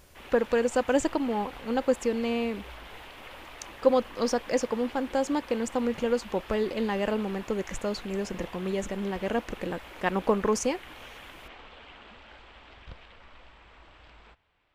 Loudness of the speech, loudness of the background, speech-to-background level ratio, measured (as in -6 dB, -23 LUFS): -29.0 LUFS, -46.0 LUFS, 17.0 dB